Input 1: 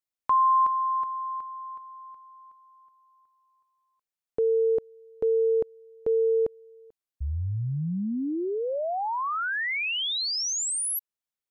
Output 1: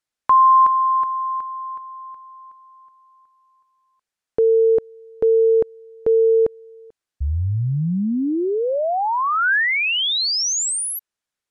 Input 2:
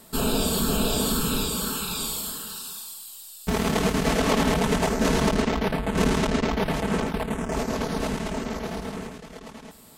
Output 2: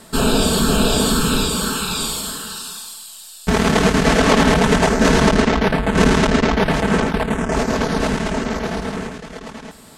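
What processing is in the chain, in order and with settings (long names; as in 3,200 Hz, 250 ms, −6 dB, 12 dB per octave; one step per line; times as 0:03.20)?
low-pass filter 9,200 Hz 12 dB per octave
parametric band 1,600 Hz +4 dB 0.46 octaves
level +8 dB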